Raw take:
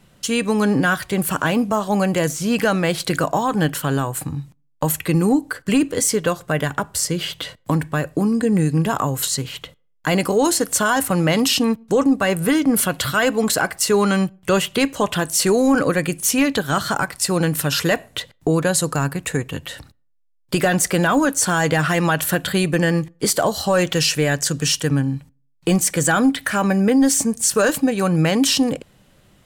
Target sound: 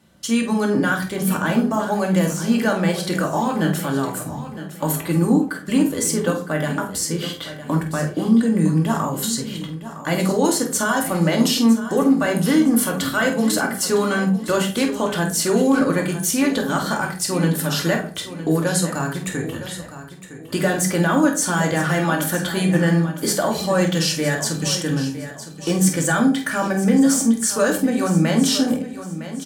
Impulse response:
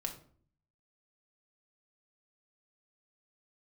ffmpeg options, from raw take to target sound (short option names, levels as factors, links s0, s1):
-filter_complex "[0:a]highpass=69,equalizer=f=2600:w=6.5:g=-6,asplit=2[s0][s1];[s1]adelay=48,volume=0.316[s2];[s0][s2]amix=inputs=2:normalize=0,aecho=1:1:960|1920|2880:0.224|0.0716|0.0229[s3];[1:a]atrim=start_sample=2205,asetrate=57330,aresample=44100[s4];[s3][s4]afir=irnorm=-1:irlink=0"